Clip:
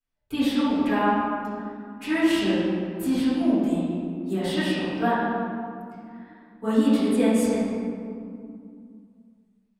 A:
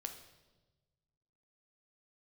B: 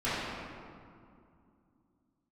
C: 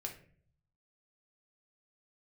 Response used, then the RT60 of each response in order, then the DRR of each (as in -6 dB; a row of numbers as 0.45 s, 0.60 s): B; 1.2 s, 2.4 s, 0.50 s; 5.0 dB, -14.5 dB, 0.5 dB